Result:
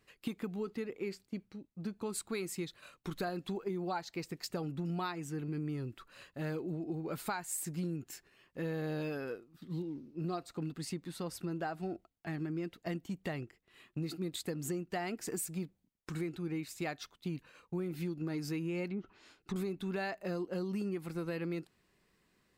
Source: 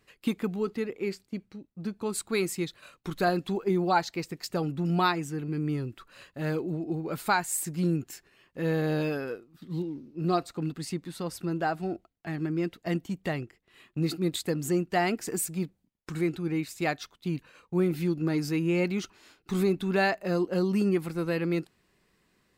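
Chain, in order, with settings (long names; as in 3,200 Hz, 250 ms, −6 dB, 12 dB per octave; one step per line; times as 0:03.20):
0:18.88–0:19.56: treble cut that deepens with the level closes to 680 Hz, closed at −26.5 dBFS
downward compressor 6 to 1, threshold −30 dBFS, peak gain reduction 11 dB
level −4 dB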